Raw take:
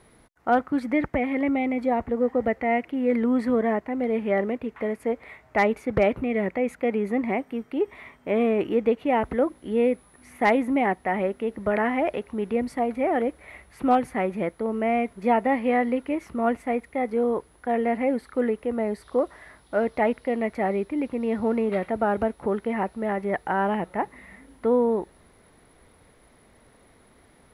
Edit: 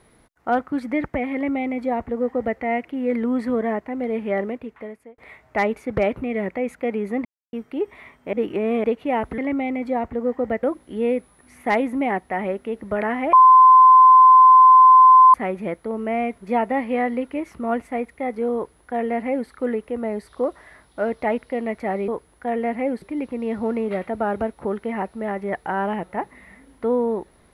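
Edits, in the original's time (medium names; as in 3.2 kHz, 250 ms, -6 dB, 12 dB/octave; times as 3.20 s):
1.34–2.59 s: copy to 9.38 s
4.43–5.18 s: fade out linear
7.25–7.53 s: mute
8.33–8.84 s: reverse
12.08–14.09 s: bleep 1.03 kHz -6.5 dBFS
17.30–18.24 s: copy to 20.83 s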